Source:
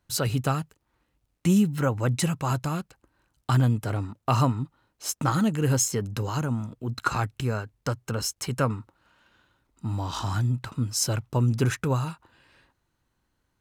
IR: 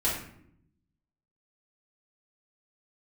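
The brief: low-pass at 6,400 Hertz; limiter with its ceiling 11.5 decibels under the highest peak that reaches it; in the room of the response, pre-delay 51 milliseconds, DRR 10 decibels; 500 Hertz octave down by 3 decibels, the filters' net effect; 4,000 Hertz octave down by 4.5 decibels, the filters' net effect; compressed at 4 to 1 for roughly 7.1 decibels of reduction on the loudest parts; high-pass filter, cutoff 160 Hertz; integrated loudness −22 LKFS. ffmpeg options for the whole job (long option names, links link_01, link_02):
-filter_complex "[0:a]highpass=160,lowpass=6400,equalizer=frequency=500:width_type=o:gain=-3.5,equalizer=frequency=4000:width_type=o:gain=-5,acompressor=threshold=-27dB:ratio=4,alimiter=level_in=2dB:limit=-24dB:level=0:latency=1,volume=-2dB,asplit=2[link_01][link_02];[1:a]atrim=start_sample=2205,adelay=51[link_03];[link_02][link_03]afir=irnorm=-1:irlink=0,volume=-19dB[link_04];[link_01][link_04]amix=inputs=2:normalize=0,volume=14.5dB"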